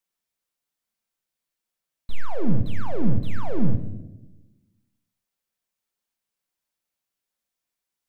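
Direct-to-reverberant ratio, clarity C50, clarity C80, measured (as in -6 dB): 5.5 dB, 10.0 dB, 13.0 dB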